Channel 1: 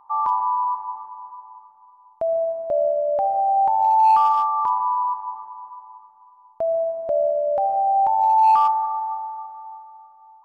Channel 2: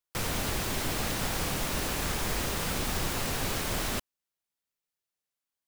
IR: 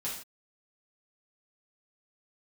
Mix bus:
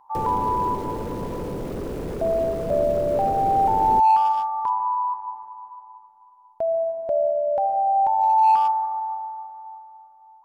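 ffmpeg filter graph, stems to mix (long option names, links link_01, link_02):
-filter_complex "[0:a]bandreject=frequency=1200:width=6.1,volume=-1dB[link_01];[1:a]lowshelf=frequency=680:width_type=q:width=3:gain=13.5,acrossover=split=120|2400[link_02][link_03][link_04];[link_02]acompressor=threshold=-28dB:ratio=4[link_05];[link_03]acompressor=threshold=-22dB:ratio=4[link_06];[link_04]acompressor=threshold=-48dB:ratio=4[link_07];[link_05][link_06][link_07]amix=inputs=3:normalize=0,asoftclip=type=tanh:threshold=-23.5dB,volume=-2dB[link_08];[link_01][link_08]amix=inputs=2:normalize=0"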